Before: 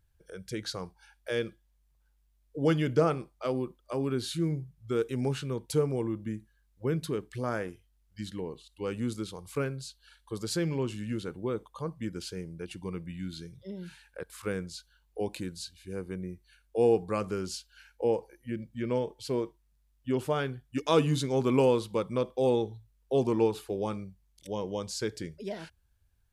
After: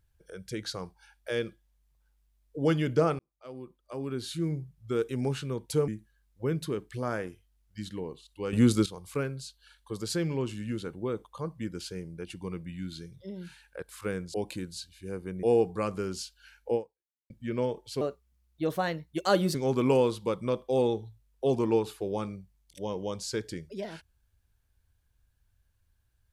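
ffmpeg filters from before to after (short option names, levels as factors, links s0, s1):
-filter_complex "[0:a]asplit=10[s0][s1][s2][s3][s4][s5][s6][s7][s8][s9];[s0]atrim=end=3.19,asetpts=PTS-STARTPTS,afade=t=out:st=3.186:d=0.004:c=hsin[s10];[s1]atrim=start=3.19:end=5.882,asetpts=PTS-STARTPTS,afade=t=in:d=1.44[s11];[s2]atrim=start=6.288:end=8.942[s12];[s3]atrim=start=8.938:end=9.272,asetpts=PTS-STARTPTS,volume=3.55[s13];[s4]atrim=start=9.268:end=14.752[s14];[s5]atrim=start=15.178:end=16.272[s15];[s6]atrim=start=16.758:end=18.63,asetpts=PTS-STARTPTS,afade=t=out:st=1.322:d=0.55:c=exp[s16];[s7]atrim=start=18.63:end=19.344,asetpts=PTS-STARTPTS,afade=t=in:d=0.004:c=hsin[s17];[s8]atrim=start=19.34:end=21.23,asetpts=PTS-STARTPTS,asetrate=54243,aresample=44100,atrim=end_sample=67763,asetpts=PTS-STARTPTS[s18];[s9]atrim=start=21.226[s19];[s10][s11]concat=n=2:v=0:a=1[s20];[s20][s12]acrossfade=d=0.004:c1=hsin:c2=hsin[s21];[s21][s13]acrossfade=d=0.004:c1=hsin:c2=hsin[s22];[s22][s14]acrossfade=d=0.004:c1=hsin:c2=hsin[s23];[s23][s15]acrossfade=d=0.004:c1=hsin:c2=hsin[s24];[s16][s17]concat=n=2:v=0:a=1[s25];[s24][s25]acrossfade=d=0.004:c1=hsin:c2=hsin[s26];[s26][s18]acrossfade=d=0.004:c1=hsin:c2=hsin[s27];[s27][s19]acrossfade=d=0.004:c1=hsin:c2=hsin"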